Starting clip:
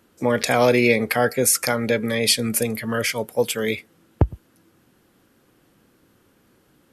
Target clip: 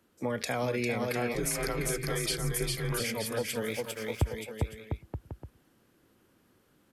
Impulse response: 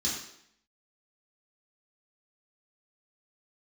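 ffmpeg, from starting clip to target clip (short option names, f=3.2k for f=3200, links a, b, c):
-filter_complex "[0:a]aecho=1:1:400|700|925|1094|1220:0.631|0.398|0.251|0.158|0.1,acrossover=split=160[a][b];[b]acompressor=threshold=-20dB:ratio=4[c];[a][c]amix=inputs=2:normalize=0,asettb=1/sr,asplit=3[d][e][f];[d]atrim=end=1.344[g];[e]atrim=start=1.34:end=3,asetpts=PTS-STARTPTS,afade=t=in:d=0.004:c=qsin,afade=t=out:st=1.656:d=0.004:c=qsin,afreqshift=-87[h];[f]atrim=start=2.996[i];[g][h]acrossfade=d=0.004:c1=hsin:c2=qsin[j];[j][i]acrossfade=d=0.004:c1=qsin:c2=hsin,asettb=1/sr,asplit=3[k][l][m];[k]atrim=end=3.624[n];[l]atrim=start=3.62:end=4.24,asetpts=PTS-STARTPTS,afade=t=in:d=0.004:c=qsin,afade=t=out:st=0.616:d=0.004:c=qsin,aeval=exprs='sgn(val(0))*max(abs(val(0))-0.00794,0)':c=same[o];[m]atrim=start=4.236[p];[n][o]acrossfade=d=0.004:c1=hsin:c2=qsin[q];[q][p]acrossfade=d=0.004:c1=qsin:c2=hsin,volume=-9dB"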